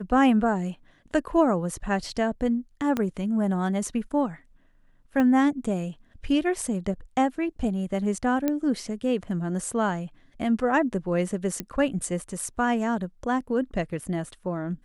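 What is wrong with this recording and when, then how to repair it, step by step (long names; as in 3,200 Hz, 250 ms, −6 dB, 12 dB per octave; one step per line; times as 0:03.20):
0:02.97: click −13 dBFS
0:05.20: click −15 dBFS
0:08.48: click −12 dBFS
0:11.60: click −14 dBFS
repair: click removal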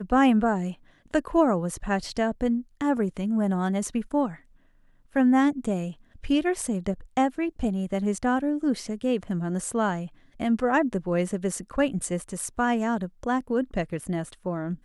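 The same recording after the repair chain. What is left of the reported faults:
0:02.97: click
0:05.20: click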